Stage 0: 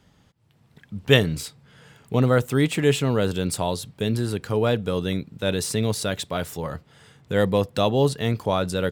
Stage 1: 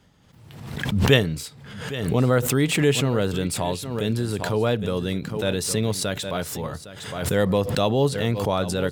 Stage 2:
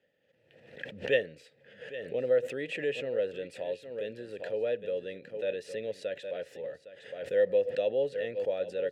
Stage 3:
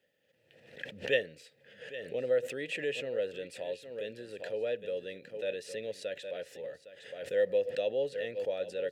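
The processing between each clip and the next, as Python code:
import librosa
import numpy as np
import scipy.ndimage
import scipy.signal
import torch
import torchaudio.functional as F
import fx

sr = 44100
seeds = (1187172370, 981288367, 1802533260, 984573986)

y1 = x + 10.0 ** (-15.0 / 20.0) * np.pad(x, (int(810 * sr / 1000.0), 0))[:len(x)]
y1 = fx.pre_swell(y1, sr, db_per_s=50.0)
y1 = y1 * librosa.db_to_amplitude(-1.0)
y2 = fx.vowel_filter(y1, sr, vowel='e')
y3 = fx.high_shelf(y2, sr, hz=3200.0, db=9.0)
y3 = y3 * librosa.db_to_amplitude(-3.0)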